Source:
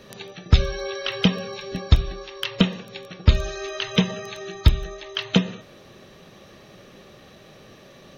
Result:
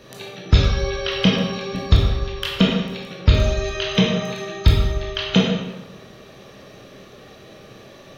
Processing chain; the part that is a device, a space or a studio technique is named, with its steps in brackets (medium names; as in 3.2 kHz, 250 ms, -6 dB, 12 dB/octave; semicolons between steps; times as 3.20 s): bathroom (reverberation RT60 1.0 s, pre-delay 15 ms, DRR -2 dB)